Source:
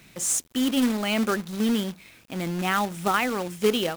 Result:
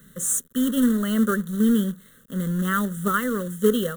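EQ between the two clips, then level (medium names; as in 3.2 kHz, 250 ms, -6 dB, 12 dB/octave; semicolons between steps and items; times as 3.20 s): Butterworth band-stop 2.4 kHz, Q 3.1; static phaser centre 480 Hz, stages 8; static phaser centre 2.1 kHz, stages 4; +6.5 dB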